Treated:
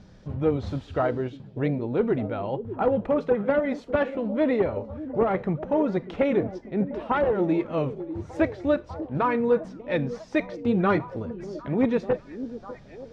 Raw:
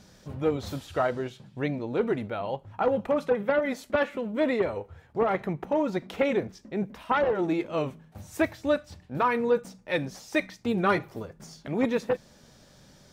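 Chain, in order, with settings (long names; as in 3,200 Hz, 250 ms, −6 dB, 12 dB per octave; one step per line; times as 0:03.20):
low-pass filter 5,200 Hz 12 dB per octave
spectral tilt −2 dB per octave
on a send: echo through a band-pass that steps 597 ms, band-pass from 320 Hz, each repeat 0.7 octaves, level −10 dB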